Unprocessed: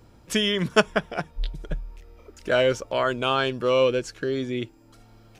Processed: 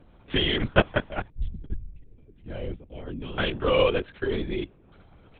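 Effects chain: 1.29–3.39 EQ curve 230 Hz 0 dB, 1100 Hz -28 dB, 2000 Hz -17 dB; LPC vocoder at 8 kHz whisper; gain -1 dB

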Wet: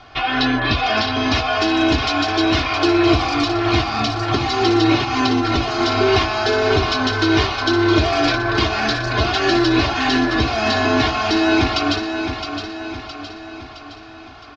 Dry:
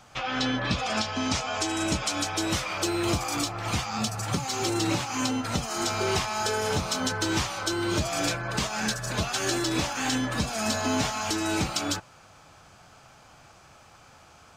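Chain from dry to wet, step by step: steep low-pass 4800 Hz 36 dB/oct; comb 2.8 ms, depth 82%; on a send: feedback echo 0.665 s, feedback 51%, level -8 dB; on the sum: gain +8 dB

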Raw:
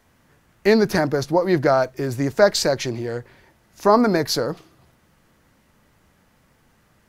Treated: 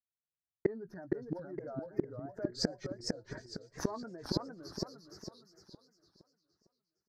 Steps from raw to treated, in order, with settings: spectral contrast raised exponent 1.8; gate -48 dBFS, range -56 dB; doubler 17 ms -12 dB; in parallel at -9.5 dB: one-sided clip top -12 dBFS; on the sum: resonant high shelf 2000 Hz -8 dB, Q 3; on a send: thin delay 0.118 s, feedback 67%, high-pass 5200 Hz, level -15 dB; on the sum: flipped gate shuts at -16 dBFS, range -32 dB; bell 5100 Hz +3 dB 0.93 oct; warbling echo 0.46 s, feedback 37%, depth 196 cents, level -3.5 dB; gain +1 dB

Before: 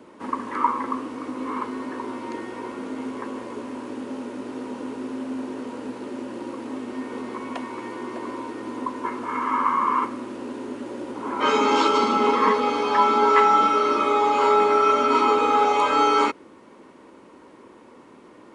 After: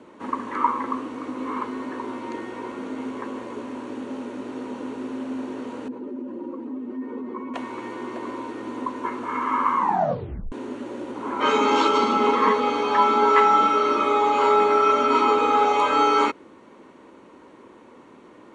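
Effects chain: 5.88–7.54 spectral contrast raised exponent 1.6; 9.77 tape stop 0.75 s; LPF 8000 Hz 12 dB/oct; notch 5000 Hz, Q 6.9

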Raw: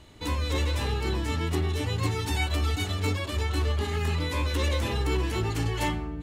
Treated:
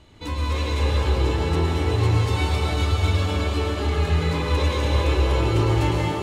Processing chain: high shelf 9300 Hz -11.5 dB; notch 1800 Hz, Q 25; band-limited delay 0.308 s, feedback 65%, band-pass 660 Hz, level -4.5 dB; reverb RT60 3.2 s, pre-delay 98 ms, DRR -3 dB

